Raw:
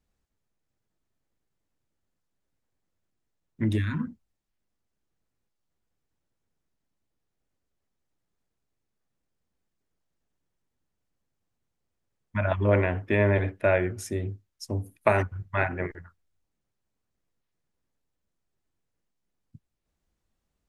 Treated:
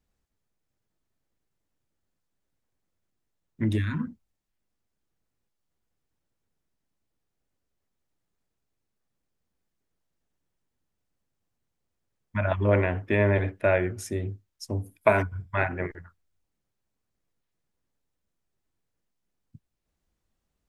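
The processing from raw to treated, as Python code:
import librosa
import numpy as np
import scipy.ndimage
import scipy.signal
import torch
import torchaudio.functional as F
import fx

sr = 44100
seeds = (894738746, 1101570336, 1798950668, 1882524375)

y = fx.ripple_eq(x, sr, per_octave=1.7, db=8, at=(14.95, 15.55))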